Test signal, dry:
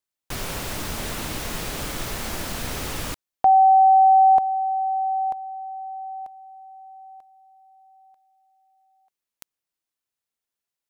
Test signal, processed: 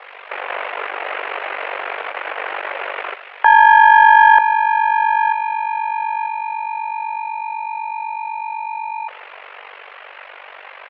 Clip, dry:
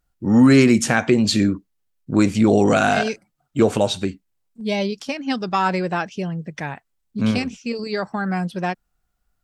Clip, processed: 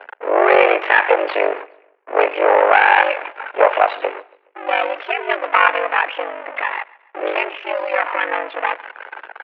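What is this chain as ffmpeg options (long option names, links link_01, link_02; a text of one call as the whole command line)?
ffmpeg -i in.wav -af "aeval=exprs='val(0)+0.5*0.0841*sgn(val(0))':channel_layout=same,afftdn=noise_reduction=15:noise_floor=-40,adynamicequalizer=threshold=0.0398:dfrequency=2000:dqfactor=0.75:tfrequency=2000:tqfactor=0.75:attack=5:release=100:ratio=0.417:range=2:mode=boostabove:tftype=bell,aeval=exprs='1.06*(cos(1*acos(clip(val(0)/1.06,-1,1)))-cos(1*PI/2))+0.0211*(cos(3*acos(clip(val(0)/1.06,-1,1)))-cos(3*PI/2))+0.119*(cos(4*acos(clip(val(0)/1.06,-1,1)))-cos(4*PI/2))+0.00596*(cos(7*acos(clip(val(0)/1.06,-1,1)))-cos(7*PI/2))+0.168*(cos(8*acos(clip(val(0)/1.06,-1,1)))-cos(8*PI/2))':channel_layout=same,highpass=frequency=360:width_type=q:width=0.5412,highpass=frequency=360:width_type=q:width=1.307,lowpass=frequency=2500:width_type=q:width=0.5176,lowpass=frequency=2500:width_type=q:width=0.7071,lowpass=frequency=2500:width_type=q:width=1.932,afreqshift=130,aeval=exprs='val(0)*sin(2*PI*24*n/s)':channel_layout=same,aecho=1:1:140|280|420:0.0708|0.0304|0.0131,apsyclip=7.5dB,volume=-1.5dB" out.wav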